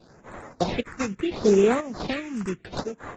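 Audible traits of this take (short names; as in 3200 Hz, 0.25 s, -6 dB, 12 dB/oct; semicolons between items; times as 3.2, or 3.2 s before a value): chopped level 1 Hz, depth 65%, duty 80%; aliases and images of a low sample rate 3100 Hz, jitter 20%; phasing stages 4, 0.73 Hz, lowest notch 560–4800 Hz; AAC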